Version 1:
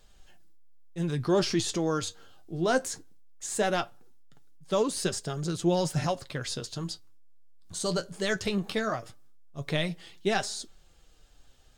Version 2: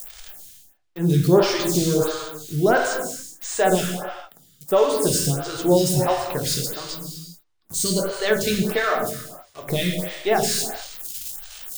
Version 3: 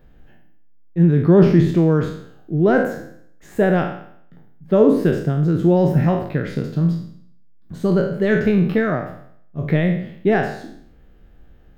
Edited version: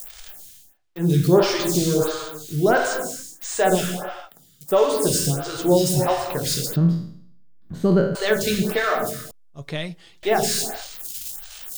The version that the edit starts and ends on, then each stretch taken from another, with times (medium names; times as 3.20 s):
2
6.76–8.15 s: from 3
9.31–10.23 s: from 1